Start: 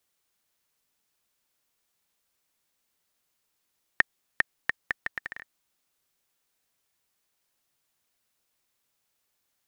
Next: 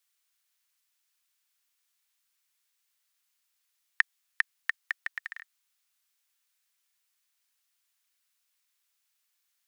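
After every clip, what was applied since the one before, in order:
high-pass filter 1,400 Hz 12 dB per octave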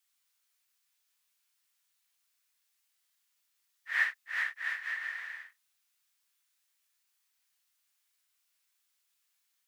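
random phases in long frames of 200 ms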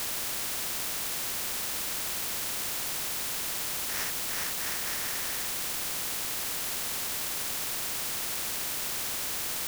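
running median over 15 samples
in parallel at −9 dB: bit-depth reduction 6 bits, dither triangular
on the sum: every bin compressed towards the loudest bin 4 to 1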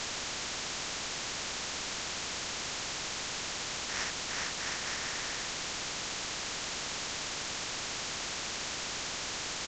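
downsampling to 16,000 Hz

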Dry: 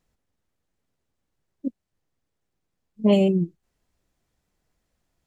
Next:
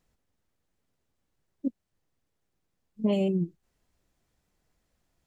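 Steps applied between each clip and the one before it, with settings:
downward compressor 6 to 1, threshold −23 dBFS, peak gain reduction 9.5 dB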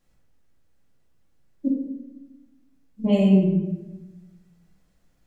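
rectangular room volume 460 cubic metres, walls mixed, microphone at 2.3 metres

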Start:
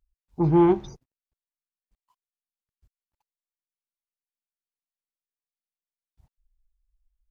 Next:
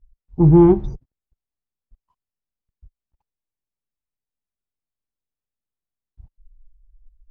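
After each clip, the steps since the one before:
spectral tilt −4 dB per octave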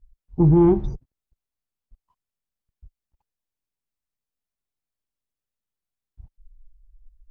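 brickwall limiter −8.5 dBFS, peak gain reduction 6.5 dB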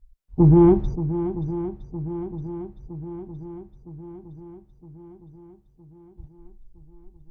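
feedback echo with a long and a short gap by turns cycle 963 ms, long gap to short 1.5 to 1, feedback 57%, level −12 dB
level +1.5 dB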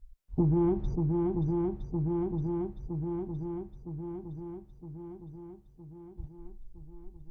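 downward compressor 4 to 1, threshold −27 dBFS, peak gain reduction 13.5 dB
level +1 dB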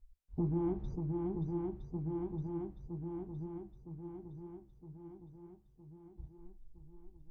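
flanger 2 Hz, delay 9.9 ms, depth 7.5 ms, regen +60%
level −3.5 dB

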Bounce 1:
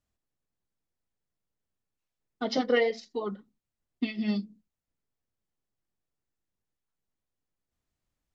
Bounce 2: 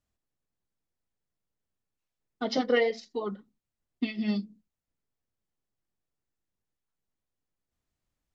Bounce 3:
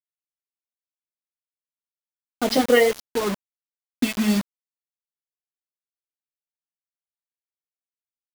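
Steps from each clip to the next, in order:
no processing that can be heard
low-pass that shuts in the quiet parts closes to 470 Hz; bit reduction 6 bits; level +8 dB

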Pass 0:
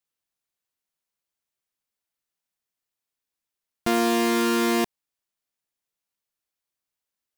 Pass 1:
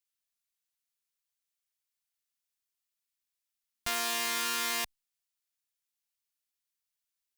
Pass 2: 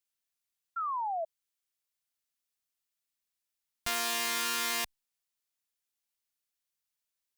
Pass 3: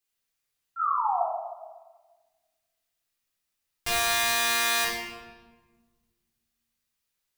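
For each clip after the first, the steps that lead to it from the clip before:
guitar amp tone stack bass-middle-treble 10-0-10
sound drawn into the spectrogram fall, 0:00.76–0:01.25, 630–1,400 Hz −33 dBFS
rectangular room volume 1,100 cubic metres, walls mixed, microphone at 3.8 metres

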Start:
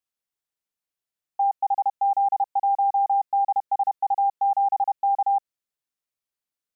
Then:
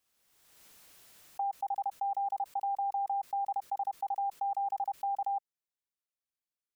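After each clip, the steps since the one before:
dynamic equaliser 810 Hz, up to −3 dB, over −35 dBFS, Q 4.3
background raised ahead of every attack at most 35 dB per second
level −8.5 dB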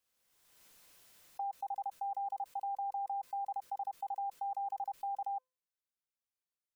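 tuned comb filter 510 Hz, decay 0.37 s, mix 70%
level +5 dB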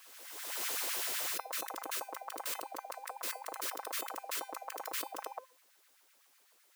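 auto-filter high-pass sine 7.9 Hz 320–1,900 Hz
every bin compressed towards the loudest bin 10 to 1
level +1.5 dB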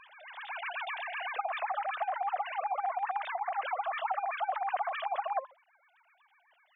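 three sine waves on the formant tracks
level +6 dB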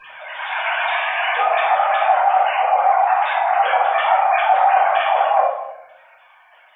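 convolution reverb RT60 0.95 s, pre-delay 3 ms, DRR −12.5 dB
level +2.5 dB

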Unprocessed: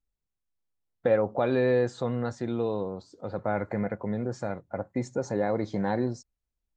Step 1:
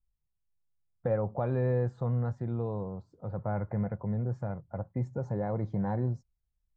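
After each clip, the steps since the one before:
drawn EQ curve 150 Hz 0 dB, 270 Hz −14 dB, 1,000 Hz −10 dB, 4,100 Hz −28 dB
level +5 dB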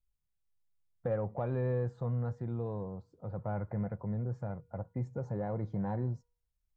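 tuned comb filter 480 Hz, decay 0.53 s, mix 40%
in parallel at −8 dB: soft clipping −32 dBFS, distortion −13 dB
on the sum: level −1.5 dB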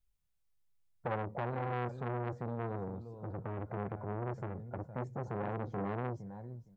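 repeating echo 462 ms, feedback 16%, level −14 dB
saturating transformer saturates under 980 Hz
level +2.5 dB

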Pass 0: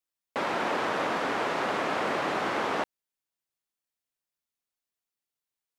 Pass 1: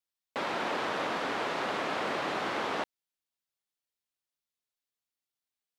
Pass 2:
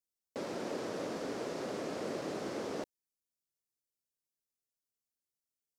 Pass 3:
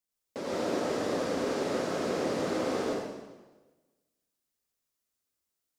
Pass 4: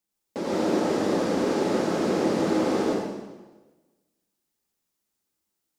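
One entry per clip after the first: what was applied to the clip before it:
parametric band 3,800 Hz +4 dB 1.1 octaves; level −4 dB
flat-topped bell 1,700 Hz −13 dB 2.7 octaves; level −1 dB
convolution reverb RT60 1.2 s, pre-delay 83 ms, DRR −4.5 dB; level +2 dB
hollow resonant body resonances 200/330/840 Hz, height 8 dB, ringing for 45 ms; level +3.5 dB

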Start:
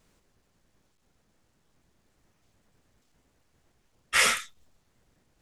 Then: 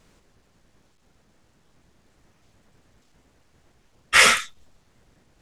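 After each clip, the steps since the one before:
high-shelf EQ 11,000 Hz −10 dB
level +8.5 dB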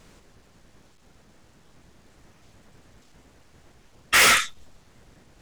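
gain into a clipping stage and back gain 20 dB
level +6 dB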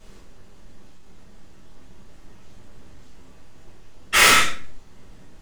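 rectangular room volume 48 cubic metres, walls mixed, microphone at 1.6 metres
level −5.5 dB

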